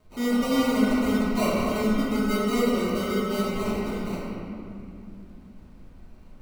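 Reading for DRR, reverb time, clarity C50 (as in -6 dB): -9.0 dB, 2.5 s, -3.5 dB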